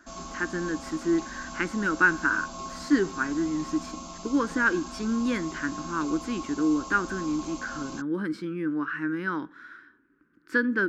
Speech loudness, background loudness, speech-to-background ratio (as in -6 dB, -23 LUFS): -28.0 LUFS, -39.5 LUFS, 11.5 dB